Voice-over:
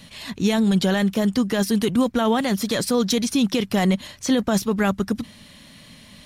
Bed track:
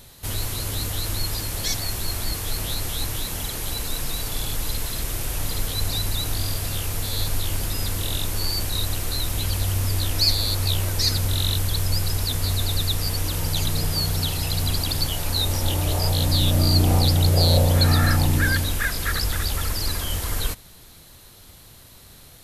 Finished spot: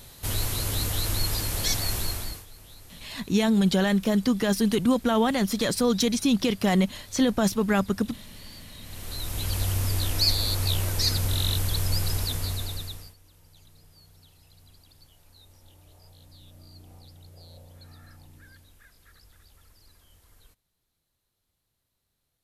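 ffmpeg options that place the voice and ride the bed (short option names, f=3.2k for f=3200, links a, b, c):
-filter_complex "[0:a]adelay=2900,volume=-2.5dB[a];[1:a]volume=18dB,afade=t=out:st=1.97:d=0.49:silence=0.0891251,afade=t=in:st=8.82:d=0.78:silence=0.11885,afade=t=out:st=12.14:d=1.01:silence=0.0354813[b];[a][b]amix=inputs=2:normalize=0"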